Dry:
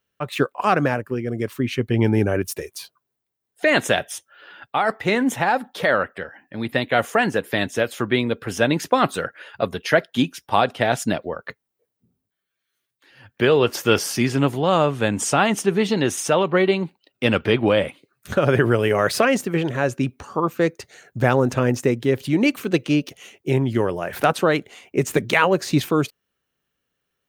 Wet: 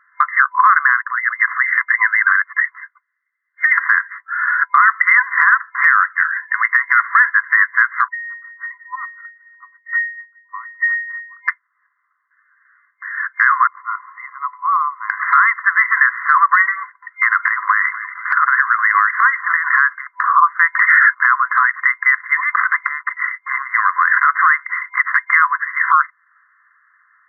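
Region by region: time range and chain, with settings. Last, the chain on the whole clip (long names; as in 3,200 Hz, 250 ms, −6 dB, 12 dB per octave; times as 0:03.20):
0:02.78–0:03.78: gain on one half-wave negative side −7 dB + high-pass with resonance 2,900 Hz, resonance Q 9.4 + downward compressor 5 to 1, threshold −21 dBFS
0:08.08–0:11.48: high-shelf EQ 3,000 Hz +11 dB + resonances in every octave A#, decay 0.69 s + expander for the loud parts, over −52 dBFS
0:13.67–0:15.10: formant filter u + phaser with its sweep stopped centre 640 Hz, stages 6 + multiband upward and downward compressor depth 40%
0:16.79–0:19.68: downward compressor 16 to 1, threshold −20 dBFS + echo with shifted repeats 233 ms, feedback 61%, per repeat −130 Hz, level −20 dB
0:20.75–0:21.24: high-shelf EQ 7,900 Hz −3 dB + envelope flattener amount 100%
0:22.42–0:25.00: leveller curve on the samples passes 1 + downward compressor, threshold −21 dBFS + parametric band 390 Hz −8.5 dB 1.2 octaves
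whole clip: brick-wall band-pass 1,000–2,100 Hz; downward compressor 2.5 to 1, threshold −43 dBFS; boost into a limiter +31 dB; level −1 dB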